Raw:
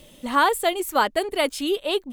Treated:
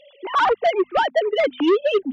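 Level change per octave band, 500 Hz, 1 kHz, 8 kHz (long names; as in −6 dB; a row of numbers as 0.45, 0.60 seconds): +5.5 dB, +1.5 dB, below −15 dB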